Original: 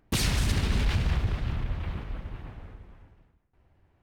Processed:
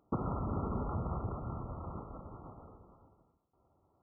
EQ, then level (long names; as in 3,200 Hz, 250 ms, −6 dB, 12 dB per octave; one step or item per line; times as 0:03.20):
high-pass filter 300 Hz 6 dB per octave
linear-phase brick-wall low-pass 1,400 Hz
0.0 dB